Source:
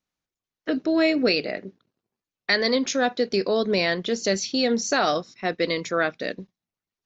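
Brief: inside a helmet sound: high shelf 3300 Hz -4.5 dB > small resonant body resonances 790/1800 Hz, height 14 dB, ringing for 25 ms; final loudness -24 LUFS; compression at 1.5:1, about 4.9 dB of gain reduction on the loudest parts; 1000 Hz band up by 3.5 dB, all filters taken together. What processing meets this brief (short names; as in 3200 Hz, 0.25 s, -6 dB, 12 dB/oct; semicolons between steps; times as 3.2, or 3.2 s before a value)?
bell 1000 Hz +6 dB; compressor 1.5:1, threshold -28 dBFS; high shelf 3300 Hz -4.5 dB; small resonant body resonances 790/1800 Hz, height 14 dB, ringing for 25 ms; gain -1 dB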